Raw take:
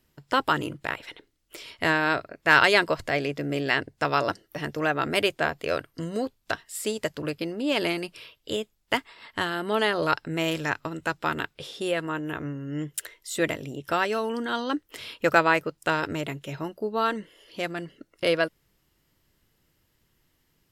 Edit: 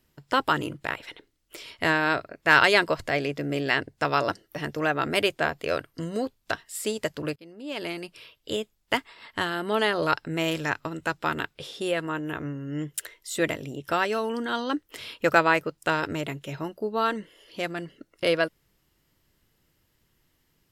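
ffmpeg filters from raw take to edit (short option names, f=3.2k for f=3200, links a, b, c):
-filter_complex "[0:a]asplit=2[a][b];[a]atrim=end=7.36,asetpts=PTS-STARTPTS,afade=t=out:st=7.356:d=0.004:c=hsin:silence=0.0794328[c];[b]atrim=start=7.36,asetpts=PTS-STARTPTS,afade=t=in:d=1.19:silence=0.0794328[d];[c][d]concat=n=2:v=0:a=1"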